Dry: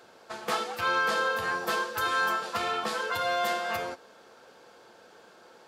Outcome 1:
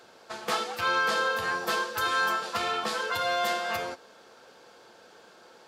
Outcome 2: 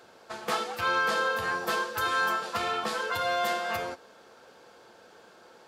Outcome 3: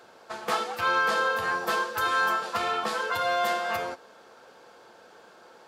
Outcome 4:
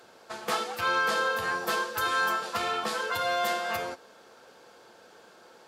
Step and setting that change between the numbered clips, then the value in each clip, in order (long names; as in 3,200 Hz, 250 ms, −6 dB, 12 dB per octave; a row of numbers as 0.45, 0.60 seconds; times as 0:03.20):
parametric band, centre frequency: 4,700, 68, 970, 14,000 Hertz